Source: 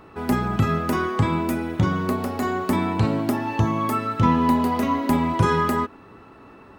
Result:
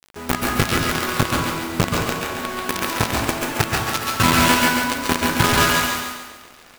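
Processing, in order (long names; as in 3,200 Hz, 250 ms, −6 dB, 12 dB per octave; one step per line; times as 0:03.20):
dynamic equaliser 1,400 Hz, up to +6 dB, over −38 dBFS, Q 2.5
log-companded quantiser 2 bits
on a send: feedback echo with a high-pass in the loop 138 ms, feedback 46%, high-pass 420 Hz, level −4 dB
on the sum: dense smooth reverb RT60 0.79 s, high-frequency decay 0.8×, pre-delay 115 ms, DRR 0 dB
level −7 dB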